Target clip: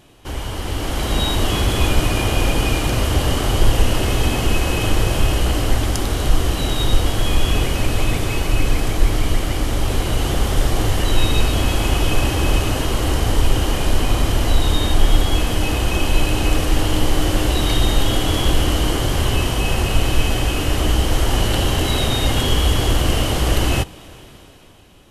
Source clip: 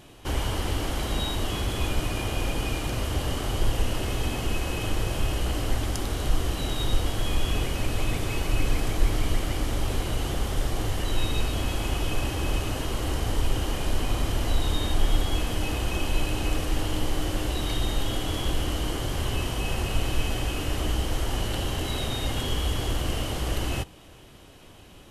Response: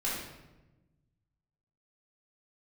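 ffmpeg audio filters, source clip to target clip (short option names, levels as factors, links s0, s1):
-af "dynaudnorm=f=110:g=17:m=3.76"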